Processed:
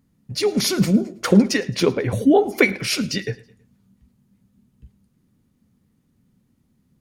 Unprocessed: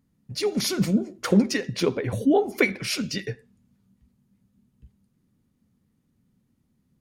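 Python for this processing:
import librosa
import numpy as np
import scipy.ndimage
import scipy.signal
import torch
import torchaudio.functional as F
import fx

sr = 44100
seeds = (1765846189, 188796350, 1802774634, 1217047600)

y = fx.echo_feedback(x, sr, ms=108, feedback_pct=43, wet_db=-22.5)
y = y * librosa.db_to_amplitude(5.0)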